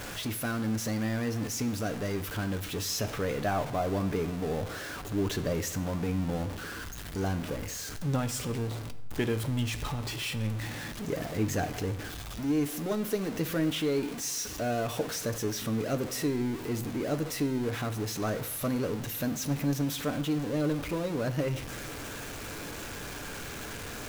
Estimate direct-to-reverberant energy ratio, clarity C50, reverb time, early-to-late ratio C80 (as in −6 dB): 7.5 dB, 14.0 dB, 1.0 s, 16.0 dB